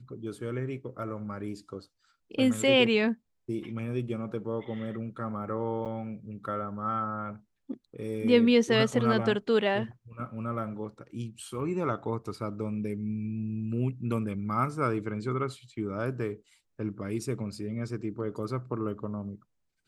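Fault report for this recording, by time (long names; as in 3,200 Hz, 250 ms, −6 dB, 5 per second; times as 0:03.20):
0:05.85–0:05.86: drop-out 7.6 ms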